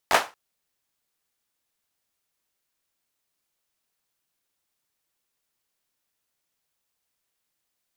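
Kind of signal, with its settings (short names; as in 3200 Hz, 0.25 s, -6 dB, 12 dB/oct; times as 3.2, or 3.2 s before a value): hand clap length 0.23 s, apart 11 ms, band 930 Hz, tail 0.26 s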